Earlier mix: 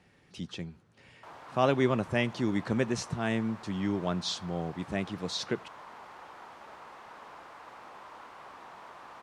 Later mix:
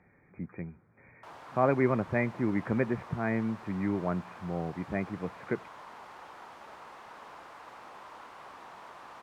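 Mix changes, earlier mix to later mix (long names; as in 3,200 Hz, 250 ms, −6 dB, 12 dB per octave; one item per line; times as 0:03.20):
speech: add linear-phase brick-wall low-pass 2,500 Hz
master: add high-shelf EQ 9,800 Hz +4 dB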